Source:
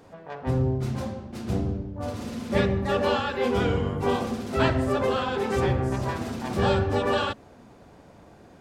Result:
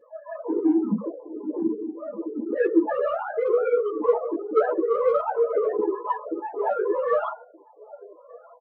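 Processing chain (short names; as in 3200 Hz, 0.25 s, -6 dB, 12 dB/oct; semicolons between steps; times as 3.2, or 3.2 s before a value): sine-wave speech; air absorption 120 m; outdoor echo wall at 210 m, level -22 dB; reverb RT60 0.35 s, pre-delay 3 ms, DRR 1.5 dB; loudest bins only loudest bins 16; notch comb 270 Hz; in parallel at -10 dB: soft clip -12.5 dBFS, distortion -11 dB; on the sum: ensemble effect; gain -6.5 dB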